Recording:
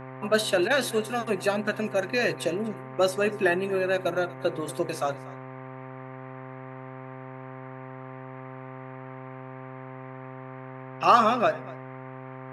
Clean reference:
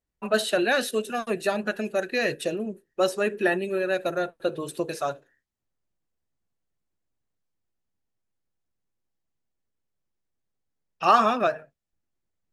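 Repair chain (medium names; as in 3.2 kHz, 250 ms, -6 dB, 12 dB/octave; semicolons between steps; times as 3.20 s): de-hum 130.6 Hz, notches 9; interpolate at 0.68 s, 22 ms; noise print and reduce 30 dB; inverse comb 240 ms -21 dB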